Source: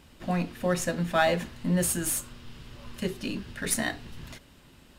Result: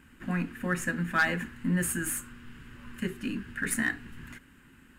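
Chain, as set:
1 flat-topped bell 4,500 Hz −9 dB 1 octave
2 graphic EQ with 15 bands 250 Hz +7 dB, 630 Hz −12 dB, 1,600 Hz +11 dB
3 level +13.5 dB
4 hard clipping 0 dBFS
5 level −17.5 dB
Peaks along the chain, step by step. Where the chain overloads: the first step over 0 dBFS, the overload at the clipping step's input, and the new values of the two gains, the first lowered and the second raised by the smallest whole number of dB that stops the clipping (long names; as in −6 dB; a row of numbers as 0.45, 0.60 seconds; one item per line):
−11.0, −6.5, +7.0, 0.0, −17.5 dBFS
step 3, 7.0 dB
step 3 +6.5 dB, step 5 −10.5 dB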